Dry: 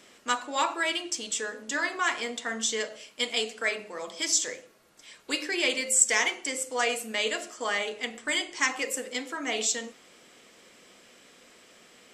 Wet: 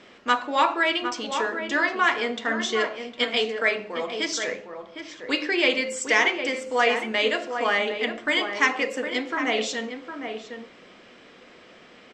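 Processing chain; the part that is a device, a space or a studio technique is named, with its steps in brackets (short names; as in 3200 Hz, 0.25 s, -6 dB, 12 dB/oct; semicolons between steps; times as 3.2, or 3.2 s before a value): shout across a valley (air absorption 200 m; outdoor echo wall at 130 m, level -7 dB); gain +7.5 dB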